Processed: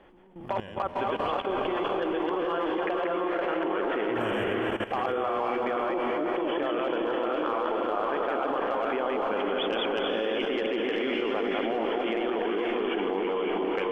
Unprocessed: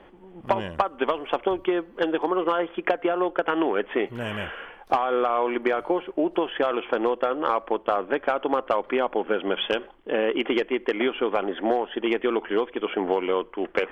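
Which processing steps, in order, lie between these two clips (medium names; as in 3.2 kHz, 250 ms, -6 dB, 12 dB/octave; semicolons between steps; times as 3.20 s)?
chunks repeated in reverse 135 ms, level -1 dB; echo that smears into a reverb 496 ms, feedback 50%, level -3.5 dB; level held to a coarse grid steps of 14 dB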